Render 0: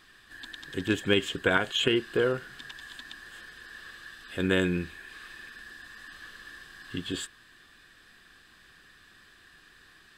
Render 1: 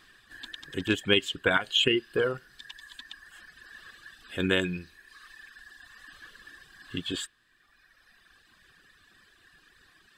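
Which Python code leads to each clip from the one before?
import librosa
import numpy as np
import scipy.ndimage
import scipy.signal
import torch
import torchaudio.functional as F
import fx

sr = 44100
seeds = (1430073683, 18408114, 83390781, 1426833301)

y = fx.dereverb_blind(x, sr, rt60_s=1.9)
y = fx.dynamic_eq(y, sr, hz=3000.0, q=1.4, threshold_db=-47.0, ratio=4.0, max_db=5)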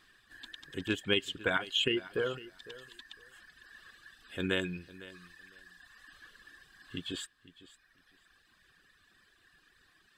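y = fx.echo_feedback(x, sr, ms=505, feedback_pct=18, wet_db=-18)
y = y * 10.0 ** (-6.0 / 20.0)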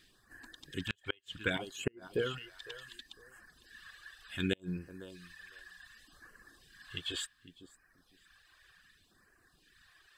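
y = fx.phaser_stages(x, sr, stages=2, low_hz=200.0, high_hz=3600.0, hz=0.67, feedback_pct=0)
y = fx.gate_flip(y, sr, shuts_db=-21.0, range_db=-37)
y = y * 10.0 ** (3.0 / 20.0)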